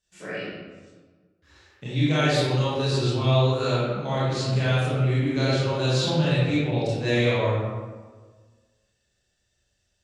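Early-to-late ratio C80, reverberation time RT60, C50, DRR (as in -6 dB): -0.5 dB, 1.4 s, -3.5 dB, -10.5 dB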